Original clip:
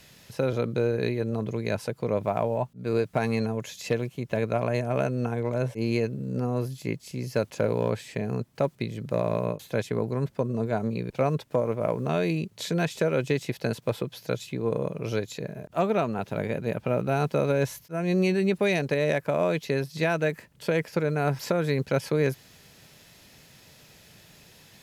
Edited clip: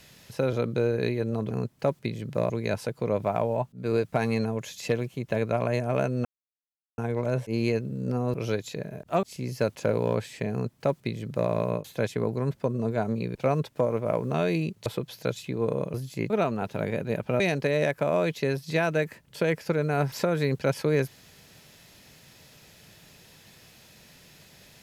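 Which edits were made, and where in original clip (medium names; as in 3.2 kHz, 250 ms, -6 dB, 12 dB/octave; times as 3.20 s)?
5.26 s: insert silence 0.73 s
6.62–6.98 s: swap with 14.98–15.87 s
8.27–9.26 s: copy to 1.51 s
12.61–13.90 s: delete
16.97–18.67 s: delete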